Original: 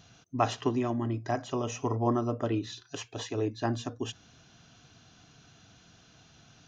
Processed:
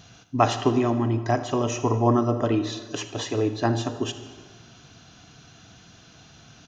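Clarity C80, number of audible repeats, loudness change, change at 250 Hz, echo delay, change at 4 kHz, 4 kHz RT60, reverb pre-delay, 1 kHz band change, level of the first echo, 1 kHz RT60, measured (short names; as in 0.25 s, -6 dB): 12.0 dB, 2, +7.5 dB, +7.5 dB, 79 ms, +7.5 dB, 1.2 s, 39 ms, +7.5 dB, -17.5 dB, 1.5 s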